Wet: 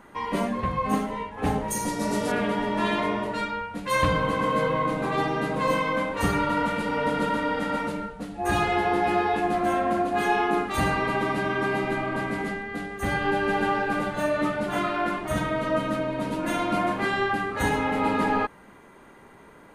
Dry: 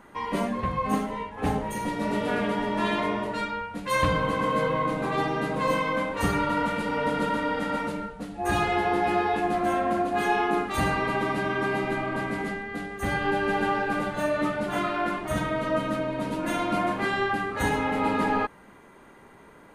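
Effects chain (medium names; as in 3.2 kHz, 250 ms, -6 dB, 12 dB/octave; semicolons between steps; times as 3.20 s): 1.68–2.32 s: resonant high shelf 4.2 kHz +9.5 dB, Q 1.5; trim +1 dB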